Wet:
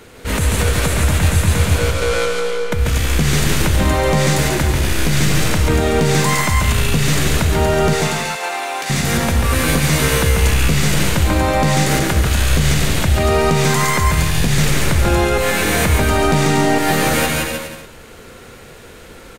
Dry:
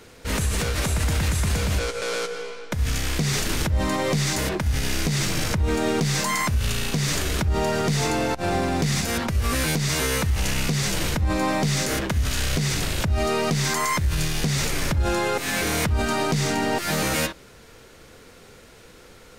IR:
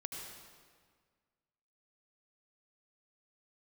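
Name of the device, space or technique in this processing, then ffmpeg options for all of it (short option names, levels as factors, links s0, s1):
ducked delay: -filter_complex "[0:a]asplit=3[s0][s1][s2];[s1]adelay=167,volume=0.668[s3];[s2]apad=whole_len=862148[s4];[s3][s4]sidechaincompress=threshold=0.02:ratio=8:attack=16:release=140[s5];[s0][s5]amix=inputs=2:normalize=0,asettb=1/sr,asplit=3[s6][s7][s8];[s6]atrim=end=7.934[s9];[s7]atrim=start=7.93:end=8.9,asetpts=PTS-STARTPTS,afade=t=in:d=0.004:c=qsin,afade=t=out:st=0.966:d=0.004:c=qsin,highpass=960[s10];[s8]atrim=start=8.896[s11];[s9][s10]acrossfade=d=0.004:c1=hsin:c2=qsin[s12];[s12][s11]acrossfade=d=0.004:c1=qsin:c2=hsin,equalizer=f=5300:w=2:g=-5.5,aecho=1:1:140|245|323.8|382.8|427.1:0.631|0.398|0.251|0.158|0.1,volume=2"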